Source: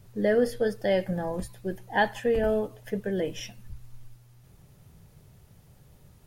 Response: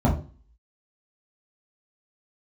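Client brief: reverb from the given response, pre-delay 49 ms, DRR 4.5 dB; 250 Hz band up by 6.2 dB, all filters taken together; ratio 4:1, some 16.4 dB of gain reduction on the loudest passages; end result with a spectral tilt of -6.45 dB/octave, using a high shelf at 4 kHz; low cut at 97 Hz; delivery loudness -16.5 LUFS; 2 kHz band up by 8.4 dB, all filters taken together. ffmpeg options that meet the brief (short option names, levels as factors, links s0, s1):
-filter_complex "[0:a]highpass=97,equalizer=f=250:t=o:g=8,equalizer=f=2000:t=o:g=8.5,highshelf=f=4000:g=7.5,acompressor=threshold=0.02:ratio=4,asplit=2[s0][s1];[1:a]atrim=start_sample=2205,adelay=49[s2];[s1][s2]afir=irnorm=-1:irlink=0,volume=0.106[s3];[s0][s3]amix=inputs=2:normalize=0,volume=5.01"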